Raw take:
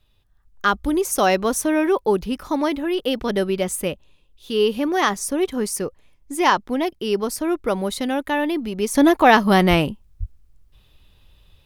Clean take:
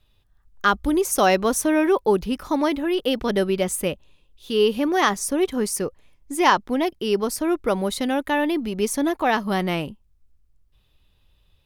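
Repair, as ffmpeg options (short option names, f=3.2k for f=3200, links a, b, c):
-filter_complex "[0:a]asplit=3[a][b][c];[a]afade=t=out:st=9.69:d=0.02[d];[b]highpass=f=140:w=0.5412,highpass=f=140:w=1.3066,afade=t=in:st=9.69:d=0.02,afade=t=out:st=9.81:d=0.02[e];[c]afade=t=in:st=9.81:d=0.02[f];[d][e][f]amix=inputs=3:normalize=0,asplit=3[g][h][i];[g]afade=t=out:st=10.19:d=0.02[j];[h]highpass=f=140:w=0.5412,highpass=f=140:w=1.3066,afade=t=in:st=10.19:d=0.02,afade=t=out:st=10.31:d=0.02[k];[i]afade=t=in:st=10.31:d=0.02[l];[j][k][l]amix=inputs=3:normalize=0,asetnsamples=n=441:p=0,asendcmd='8.95 volume volume -8dB',volume=0dB"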